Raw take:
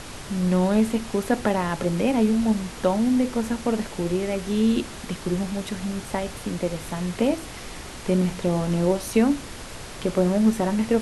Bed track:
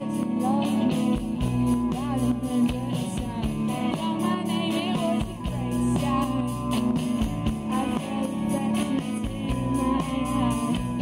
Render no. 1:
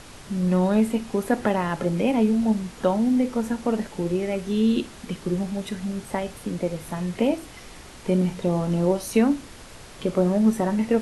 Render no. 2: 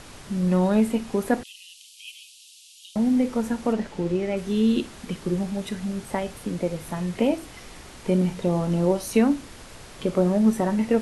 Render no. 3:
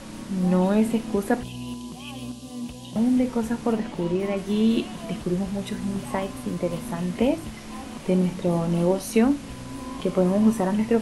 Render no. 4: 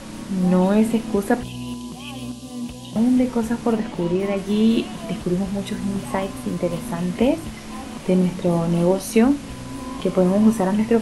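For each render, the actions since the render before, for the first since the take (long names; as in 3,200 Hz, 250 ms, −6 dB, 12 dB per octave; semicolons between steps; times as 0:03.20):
noise reduction from a noise print 6 dB
0:01.43–0:02.96: Butterworth high-pass 2,700 Hz 72 dB per octave; 0:03.73–0:04.37: high-frequency loss of the air 52 metres
mix in bed track −11.5 dB
level +3.5 dB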